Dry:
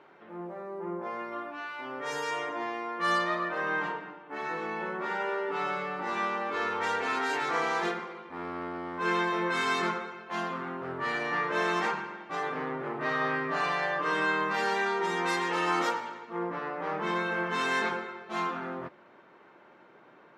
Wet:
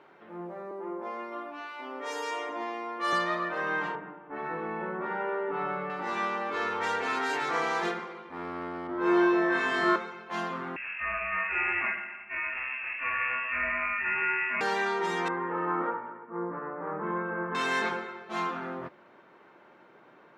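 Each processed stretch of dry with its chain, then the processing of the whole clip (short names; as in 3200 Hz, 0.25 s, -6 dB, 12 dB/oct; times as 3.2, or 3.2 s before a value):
0.71–3.13 Chebyshev high-pass 200 Hz, order 6 + dynamic EQ 1600 Hz, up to -6 dB, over -54 dBFS, Q 4.3
3.95–5.9 LPF 1800 Hz + low shelf 140 Hz +8.5 dB
8.87–9.96 LPF 1300 Hz 6 dB/oct + flutter echo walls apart 3.4 m, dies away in 1.3 s
10.76–14.61 Chebyshev high-pass 330 Hz + inverted band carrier 3000 Hz
15.28–17.55 LPF 1500 Hz 24 dB/oct + bell 720 Hz -6.5 dB 0.41 oct
whole clip: dry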